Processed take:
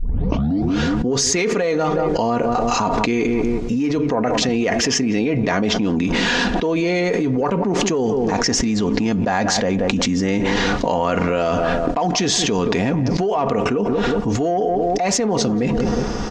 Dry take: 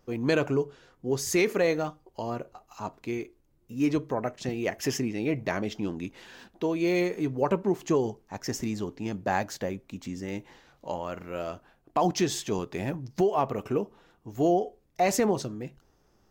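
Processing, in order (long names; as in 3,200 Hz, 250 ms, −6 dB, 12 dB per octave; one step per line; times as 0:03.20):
turntable start at the beginning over 0.82 s
low-pass filter 6,800 Hz 24 dB per octave
comb filter 4.2 ms, depth 42%
harmonic generator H 5 −31 dB, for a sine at −11 dBFS
feedback echo with a low-pass in the loop 181 ms, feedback 39%, low-pass 1,400 Hz, level −18.5 dB
envelope flattener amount 100%
level −1 dB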